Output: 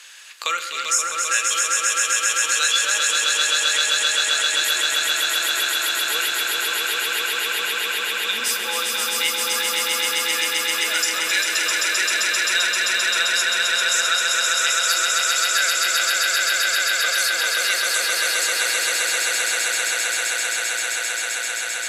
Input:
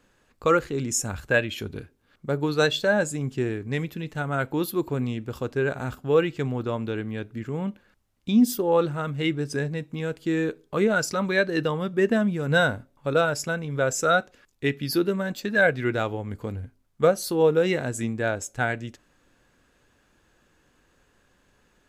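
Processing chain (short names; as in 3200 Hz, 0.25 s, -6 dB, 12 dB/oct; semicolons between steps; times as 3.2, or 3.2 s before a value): Butterworth band-pass 6000 Hz, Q 0.6; swelling echo 0.131 s, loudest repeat 8, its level -3 dB; shoebox room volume 500 m³, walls furnished, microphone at 0.78 m; three-band squash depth 70%; gain +7.5 dB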